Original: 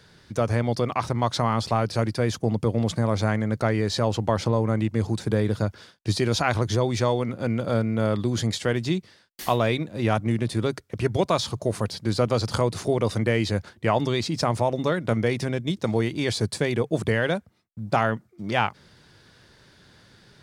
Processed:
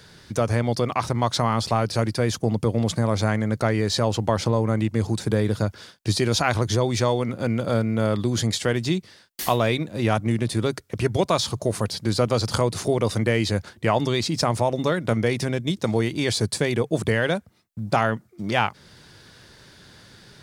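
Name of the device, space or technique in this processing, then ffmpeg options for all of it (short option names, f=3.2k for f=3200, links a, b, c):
parallel compression: -filter_complex "[0:a]highshelf=f=5.3k:g=5.5,asplit=2[a][b];[b]acompressor=threshold=-33dB:ratio=6,volume=-3.5dB[c];[a][c]amix=inputs=2:normalize=0"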